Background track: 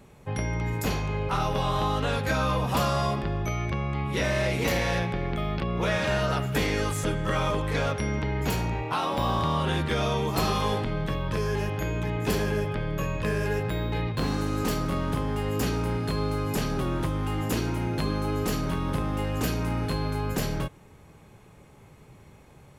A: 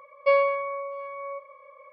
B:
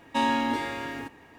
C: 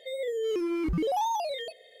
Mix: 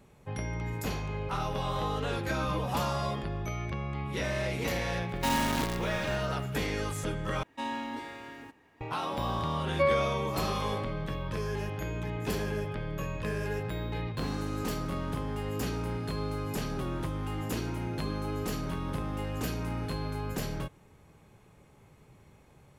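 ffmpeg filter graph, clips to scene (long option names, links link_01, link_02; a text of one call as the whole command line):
ffmpeg -i bed.wav -i cue0.wav -i cue1.wav -i cue2.wav -filter_complex "[2:a]asplit=2[link_01][link_02];[0:a]volume=-6dB[link_03];[link_01]acrusher=bits=5:dc=4:mix=0:aa=0.000001[link_04];[link_03]asplit=2[link_05][link_06];[link_05]atrim=end=7.434[link_07];[link_02]atrim=end=1.38,asetpts=PTS-STARTPTS,volume=-10.5dB[link_08];[link_06]atrim=start=8.806[link_09];[3:a]atrim=end=2,asetpts=PTS-STARTPTS,volume=-12.5dB,afade=type=in:duration=0.004:curve=hsin,afade=type=out:start_time=1.996:duration=0.004:curve=hsin,adelay=1560[link_10];[link_04]atrim=end=1.38,asetpts=PTS-STARTPTS,volume=-4.5dB,afade=type=in:duration=0.004:curve=hsin,afade=type=out:start_time=1.376:duration=0.004:curve=hsin,adelay=5080[link_11];[1:a]atrim=end=1.92,asetpts=PTS-STARTPTS,volume=-5.5dB,afade=type=in:duration=0.004:curve=hsin,afade=type=out:start_time=1.916:duration=0.004:curve=hsin,adelay=9530[link_12];[link_07][link_08]acrossfade=duration=0.004:curve1=hsin:curve2=hsin[link_13];[link_13][link_09]acrossfade=duration=0.004:curve1=hsin:curve2=hsin[link_14];[link_14][link_10][link_11][link_12]amix=inputs=4:normalize=0" out.wav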